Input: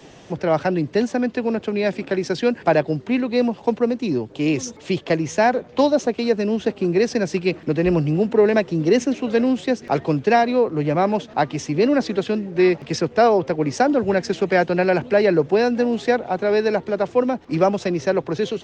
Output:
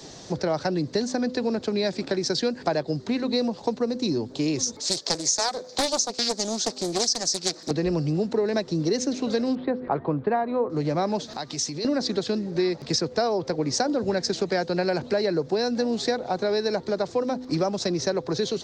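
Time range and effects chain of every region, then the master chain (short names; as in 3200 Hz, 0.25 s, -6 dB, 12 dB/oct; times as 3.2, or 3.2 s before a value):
4.8–7.71 HPF 620 Hz 6 dB/oct + resonant high shelf 3900 Hz +9.5 dB, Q 1.5 + Doppler distortion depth 0.59 ms
9.55–10.7 Gaussian blur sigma 3.8 samples + bell 1100 Hz +6 dB 0.83 oct
11.26–11.85 high shelf 2500 Hz +10 dB + compressor 4:1, threshold -32 dBFS
whole clip: resonant high shelf 3500 Hz +6.5 dB, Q 3; de-hum 252.9 Hz, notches 2; compressor 4:1, threshold -22 dBFS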